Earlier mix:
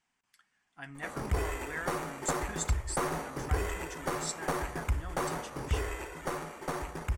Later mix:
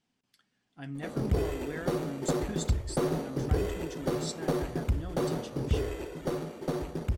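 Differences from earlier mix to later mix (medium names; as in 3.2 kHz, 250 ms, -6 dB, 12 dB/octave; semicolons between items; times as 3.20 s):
background: send -8.5 dB; master: add graphic EQ 125/250/500/1000/2000/4000/8000 Hz +8/+8/+6/-6/-6/+6/-6 dB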